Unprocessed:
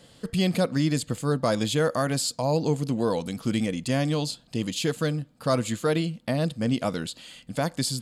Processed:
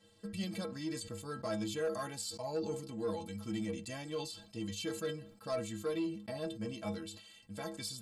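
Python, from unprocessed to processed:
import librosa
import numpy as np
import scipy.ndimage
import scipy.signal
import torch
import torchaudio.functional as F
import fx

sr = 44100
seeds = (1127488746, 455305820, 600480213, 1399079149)

y = fx.stiff_resonator(x, sr, f0_hz=97.0, decay_s=0.35, stiffness=0.03)
y = 10.0 ** (-24.5 / 20.0) * np.tanh(y / 10.0 ** (-24.5 / 20.0))
y = fx.sustainer(y, sr, db_per_s=93.0)
y = F.gain(torch.from_numpy(y), -2.5).numpy()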